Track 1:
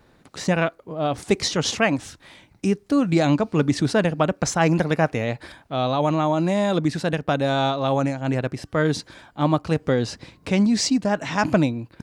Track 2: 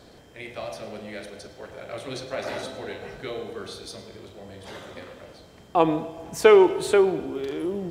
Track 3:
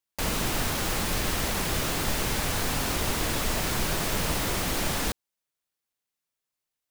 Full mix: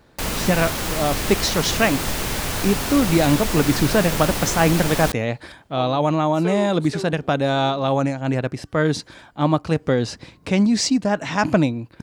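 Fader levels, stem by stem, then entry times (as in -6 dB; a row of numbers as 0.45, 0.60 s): +1.5, -14.0, +3.0 dB; 0.00, 0.00, 0.00 s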